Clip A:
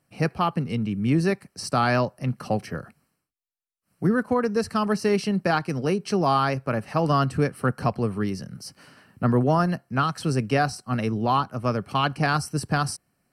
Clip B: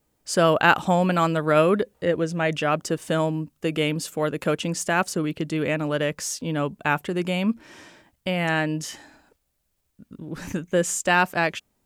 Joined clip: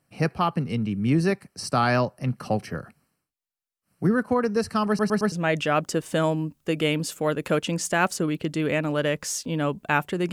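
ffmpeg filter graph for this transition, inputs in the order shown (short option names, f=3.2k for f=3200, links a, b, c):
-filter_complex "[0:a]apad=whole_dur=10.32,atrim=end=10.32,asplit=4[a][b][c][d];[a]atrim=end=4.992[e];[b]atrim=start=4.878:end=4.992[f];[c]atrim=start=4.878:end=4.992[g];[d]atrim=start=4.878:end=4.992[h];[1:a]atrim=start=2.278:end=7.28[i];[e][f]acrossfade=d=0.004:c1=hsin:c2=hsin[j];[j][g]acrossfade=d=0.004:c1=hsin:c2=hsin[k];[k][h]acrossfade=d=0.004:c1=hsin:c2=hsin[l];[l][i]acrossfade=d=0.004:c1=hsin:c2=hsin"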